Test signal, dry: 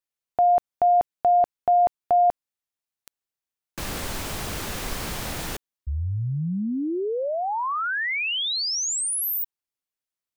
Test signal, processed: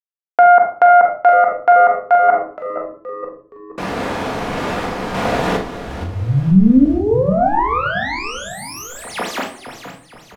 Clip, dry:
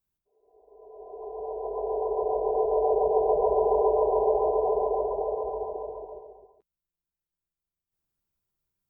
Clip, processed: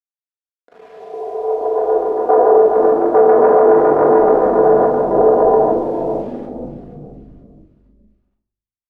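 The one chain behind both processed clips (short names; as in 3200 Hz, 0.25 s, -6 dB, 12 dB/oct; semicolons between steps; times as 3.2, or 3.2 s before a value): self-modulated delay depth 0.2 ms; gate -42 dBFS, range -10 dB; in parallel at 0 dB: compressor 12:1, threshold -28 dBFS; on the sum: random-step tremolo 3.5 Hz, depth 70%; bit-crush 9-bit; band-pass 630 Hz, Q 0.67; doubler 43 ms -9 dB; on a send: frequency-shifting echo 0.471 s, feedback 43%, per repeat -97 Hz, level -11 dB; on the sum: shoebox room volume 430 m³, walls furnished, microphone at 1.8 m; maximiser +13 dB; gain -1 dB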